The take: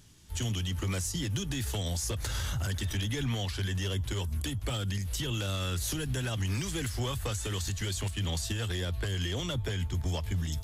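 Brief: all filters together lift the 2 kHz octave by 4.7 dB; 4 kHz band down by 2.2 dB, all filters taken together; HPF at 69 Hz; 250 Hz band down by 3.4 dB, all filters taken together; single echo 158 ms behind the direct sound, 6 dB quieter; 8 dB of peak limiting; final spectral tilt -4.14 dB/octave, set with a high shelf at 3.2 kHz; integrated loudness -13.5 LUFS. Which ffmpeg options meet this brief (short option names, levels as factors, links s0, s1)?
-af "highpass=69,equalizer=f=250:t=o:g=-5,equalizer=f=2000:t=o:g=8.5,highshelf=f=3200:g=-4,equalizer=f=4000:t=o:g=-4,alimiter=level_in=1.68:limit=0.0631:level=0:latency=1,volume=0.596,aecho=1:1:158:0.501,volume=13.3"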